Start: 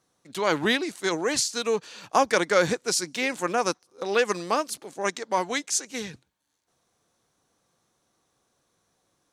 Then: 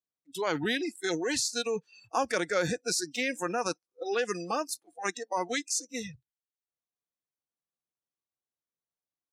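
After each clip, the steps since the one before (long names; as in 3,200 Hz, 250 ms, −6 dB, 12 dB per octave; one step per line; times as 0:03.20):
noise reduction from a noise print of the clip's start 29 dB
in parallel at −3 dB: compressor whose output falls as the input rises −27 dBFS, ratio −0.5
on the sum: level −8 dB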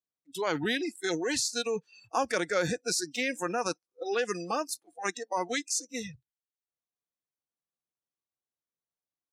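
no processing that can be heard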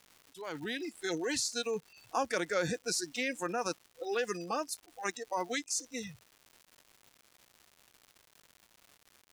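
fade in at the beginning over 1.20 s
surface crackle 270 per second −42 dBFS
level −3.5 dB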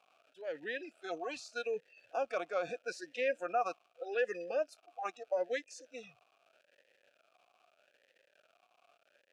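formant filter swept between two vowels a-e 0.8 Hz
level +9 dB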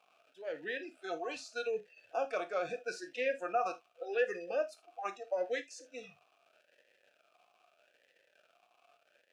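convolution reverb, pre-delay 3 ms, DRR 6.5 dB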